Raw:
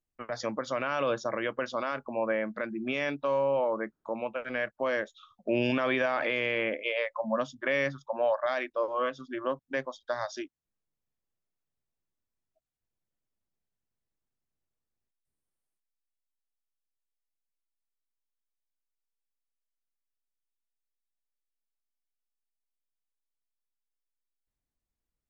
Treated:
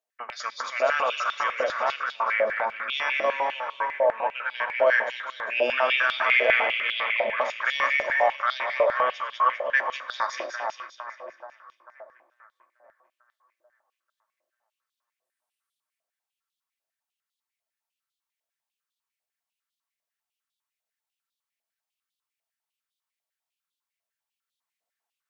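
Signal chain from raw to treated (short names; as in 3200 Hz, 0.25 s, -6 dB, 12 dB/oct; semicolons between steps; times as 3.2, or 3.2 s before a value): split-band echo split 1900 Hz, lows 0.443 s, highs 0.199 s, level -4.5 dB; shoebox room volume 4000 m³, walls furnished, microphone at 1.6 m; stepped high-pass 10 Hz 630–3500 Hz; gain +1.5 dB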